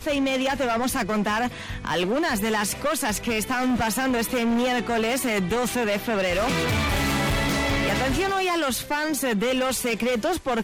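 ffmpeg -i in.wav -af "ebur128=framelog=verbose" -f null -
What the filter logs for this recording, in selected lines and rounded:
Integrated loudness:
  I:         -23.7 LUFS
  Threshold: -33.7 LUFS
Loudness range:
  LRA:         1.3 LU
  Threshold: -43.6 LUFS
  LRA low:   -24.4 LUFS
  LRA high:  -23.2 LUFS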